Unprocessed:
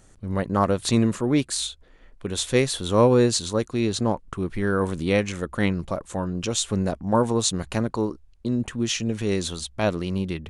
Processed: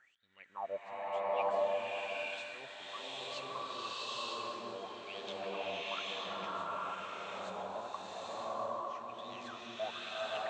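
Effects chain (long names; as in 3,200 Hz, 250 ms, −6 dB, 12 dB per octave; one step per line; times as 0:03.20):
elliptic low-pass filter 8,100 Hz, stop band 40 dB
reversed playback
downward compressor 16 to 1, threshold −34 dBFS, peak gain reduction 21.5 dB
reversed playback
LFO wah 1 Hz 600–3,700 Hz, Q 18
delay that swaps between a low-pass and a high-pass 579 ms, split 1,500 Hz, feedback 67%, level −10 dB
slow-attack reverb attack 890 ms, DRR −10.5 dB
level +11.5 dB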